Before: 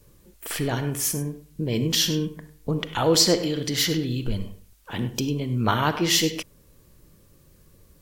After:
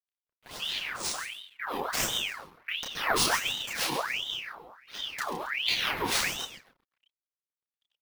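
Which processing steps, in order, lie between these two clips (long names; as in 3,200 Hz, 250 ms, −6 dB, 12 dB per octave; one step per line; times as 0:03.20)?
echo with shifted repeats 137 ms, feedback 32%, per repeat +110 Hz, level −10.5 dB
pitch-shifted copies added −4 semitones −1 dB, −3 semitones −4 dB
mains-hum notches 50/100/150 Hz
comb and all-pass reverb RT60 1.2 s, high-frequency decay 0.5×, pre-delay 20 ms, DRR 13.5 dB
dead-zone distortion −40.5 dBFS
high-pass filter 96 Hz
low-pass that shuts in the quiet parts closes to 2,800 Hz, open at −18.5 dBFS
bad sample-rate conversion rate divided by 3×, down none, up hold
multi-voice chorus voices 6, 0.32 Hz, delay 30 ms, depth 2.2 ms
ring modulator whose carrier an LFO sweeps 2,000 Hz, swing 70%, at 1.4 Hz
level −4 dB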